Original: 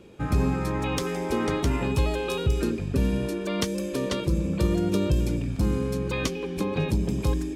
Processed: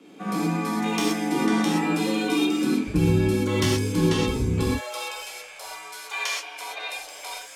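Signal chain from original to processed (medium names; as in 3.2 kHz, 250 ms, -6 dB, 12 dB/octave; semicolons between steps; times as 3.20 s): elliptic high-pass 300 Hz, stop band 50 dB, from 2.86 s 150 Hz, from 4.65 s 680 Hz; frequency shift -93 Hz; gated-style reverb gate 150 ms flat, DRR -5 dB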